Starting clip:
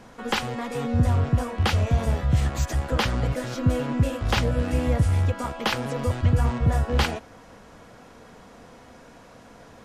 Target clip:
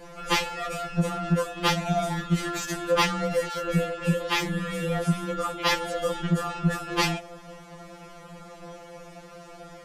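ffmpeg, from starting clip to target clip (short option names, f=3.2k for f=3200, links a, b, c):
-filter_complex "[0:a]asoftclip=type=tanh:threshold=-13.5dB,asettb=1/sr,asplit=3[a][b][c];[a]atrim=end=3.474[d];[b]atrim=start=3.47:end=5.67,asetpts=PTS-STARTPTS,afade=t=in:d=0.004:c=qsin,afade=t=out:st=2.196:d=0.004:c=qsin,acrossover=split=530|5600[e][f][g];[g]adelay=30[h];[e]adelay=100[i];[i][f][h]amix=inputs=3:normalize=0,atrim=end_sample=97020[j];[c]atrim=start=5.666[k];[d][j]acrossfade=d=0.004:c1=hsin:c2=qsin[l];[l][k]acrossfade=d=0.004:c1=qsin:c2=hsin,afftfilt=real='re*2.83*eq(mod(b,8),0)':imag='im*2.83*eq(mod(b,8),0)':win_size=2048:overlap=0.75,volume=6dB"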